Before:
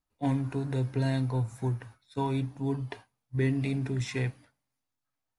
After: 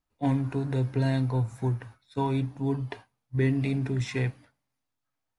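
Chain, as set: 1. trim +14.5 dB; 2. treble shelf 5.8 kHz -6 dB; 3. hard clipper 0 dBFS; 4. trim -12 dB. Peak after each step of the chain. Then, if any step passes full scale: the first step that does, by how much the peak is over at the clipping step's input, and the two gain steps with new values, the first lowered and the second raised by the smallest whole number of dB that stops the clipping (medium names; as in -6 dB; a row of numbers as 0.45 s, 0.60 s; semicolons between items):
-2.0 dBFS, -2.0 dBFS, -2.0 dBFS, -14.0 dBFS; nothing clips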